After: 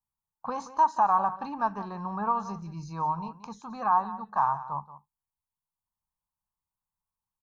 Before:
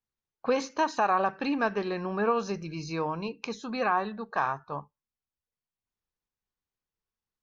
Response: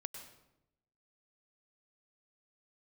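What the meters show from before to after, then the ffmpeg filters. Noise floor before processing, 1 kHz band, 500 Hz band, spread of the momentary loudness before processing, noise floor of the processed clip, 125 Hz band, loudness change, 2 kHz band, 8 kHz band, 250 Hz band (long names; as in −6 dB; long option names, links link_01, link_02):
below −85 dBFS, +4.0 dB, −9.5 dB, 10 LU, below −85 dBFS, −0.5 dB, +1.0 dB, −9.5 dB, can't be measured, −5.5 dB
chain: -af "firequalizer=gain_entry='entry(180,0);entry(280,-11);entry(460,-15);entry(910,8);entry(1500,-8);entry(2200,-19);entry(9000,1)':delay=0.05:min_phase=1,aecho=1:1:178:0.178"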